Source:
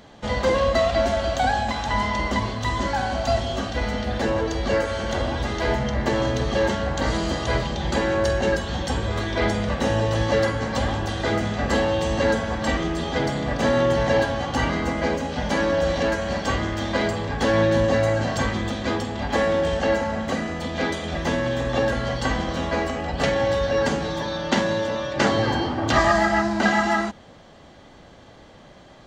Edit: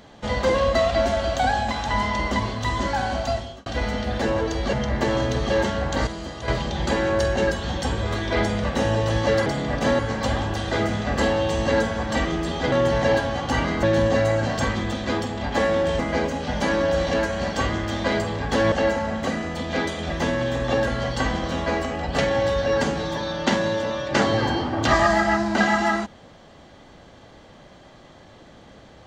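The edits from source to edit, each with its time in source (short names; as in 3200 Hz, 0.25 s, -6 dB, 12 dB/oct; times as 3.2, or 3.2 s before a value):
3.16–3.66 fade out
4.73–5.78 cut
7.12–7.53 gain -8.5 dB
13.24–13.77 move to 10.51
17.61–19.77 move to 14.88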